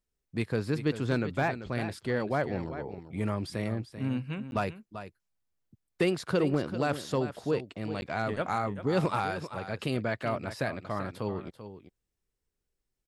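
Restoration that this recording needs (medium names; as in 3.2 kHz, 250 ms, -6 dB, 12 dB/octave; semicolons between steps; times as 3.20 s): clip repair -17.5 dBFS; interpolate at 4.51/8.01 s, 11 ms; inverse comb 389 ms -11.5 dB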